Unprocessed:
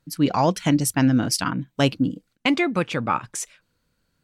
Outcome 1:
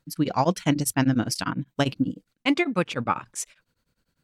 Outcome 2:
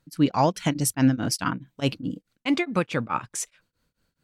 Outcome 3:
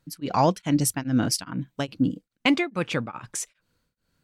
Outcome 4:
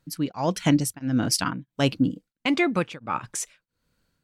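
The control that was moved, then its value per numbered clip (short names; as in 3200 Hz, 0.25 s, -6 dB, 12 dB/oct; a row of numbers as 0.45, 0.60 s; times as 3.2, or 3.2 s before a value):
beating tremolo, nulls at: 10, 4.7, 2.4, 1.5 Hz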